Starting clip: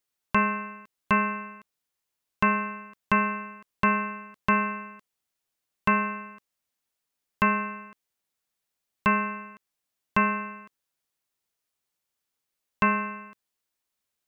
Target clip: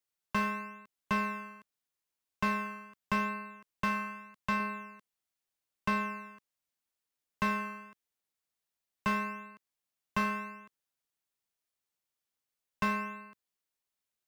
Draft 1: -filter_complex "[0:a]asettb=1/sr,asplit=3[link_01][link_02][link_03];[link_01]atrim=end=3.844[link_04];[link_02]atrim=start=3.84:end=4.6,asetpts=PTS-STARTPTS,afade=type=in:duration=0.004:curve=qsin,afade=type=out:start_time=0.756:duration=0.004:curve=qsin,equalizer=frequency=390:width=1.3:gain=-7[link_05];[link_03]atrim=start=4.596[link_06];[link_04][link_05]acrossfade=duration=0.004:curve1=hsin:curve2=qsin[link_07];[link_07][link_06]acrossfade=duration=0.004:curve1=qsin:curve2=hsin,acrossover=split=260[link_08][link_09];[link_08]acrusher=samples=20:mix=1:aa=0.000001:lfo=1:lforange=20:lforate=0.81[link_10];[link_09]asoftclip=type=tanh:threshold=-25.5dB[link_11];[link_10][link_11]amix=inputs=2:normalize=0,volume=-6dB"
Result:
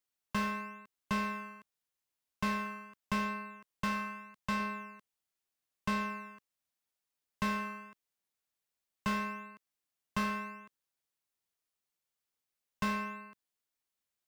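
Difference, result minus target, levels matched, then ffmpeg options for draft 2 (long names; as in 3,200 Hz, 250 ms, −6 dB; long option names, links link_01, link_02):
soft clipping: distortion +6 dB
-filter_complex "[0:a]asettb=1/sr,asplit=3[link_01][link_02][link_03];[link_01]atrim=end=3.844[link_04];[link_02]atrim=start=3.84:end=4.6,asetpts=PTS-STARTPTS,afade=type=in:duration=0.004:curve=qsin,afade=type=out:start_time=0.756:duration=0.004:curve=qsin,equalizer=frequency=390:width=1.3:gain=-7[link_05];[link_03]atrim=start=4.596[link_06];[link_04][link_05]acrossfade=duration=0.004:curve1=hsin:curve2=qsin[link_07];[link_07][link_06]acrossfade=duration=0.004:curve1=qsin:curve2=hsin,acrossover=split=260[link_08][link_09];[link_08]acrusher=samples=20:mix=1:aa=0.000001:lfo=1:lforange=20:lforate=0.81[link_10];[link_09]asoftclip=type=tanh:threshold=-19dB[link_11];[link_10][link_11]amix=inputs=2:normalize=0,volume=-6dB"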